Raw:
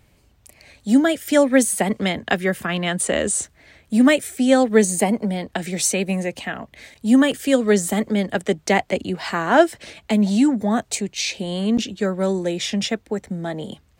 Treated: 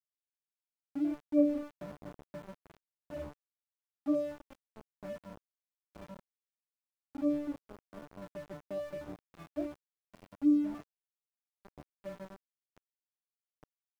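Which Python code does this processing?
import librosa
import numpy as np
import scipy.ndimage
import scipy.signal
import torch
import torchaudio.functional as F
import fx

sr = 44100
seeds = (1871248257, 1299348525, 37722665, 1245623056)

y = fx.cvsd(x, sr, bps=32000)
y = scipy.signal.sosfilt(scipy.signal.butter(2, 84.0, 'highpass', fs=sr, output='sos'), y)
y = fx.air_absorb(y, sr, metres=350.0)
y = fx.octave_resonator(y, sr, note='D', decay_s=0.77)
y = np.where(np.abs(y) >= 10.0 ** (-41.5 / 20.0), y, 0.0)
y = fx.tilt_shelf(y, sr, db=7.0, hz=1300.0)
y = y * librosa.db_to_amplitude(-4.0)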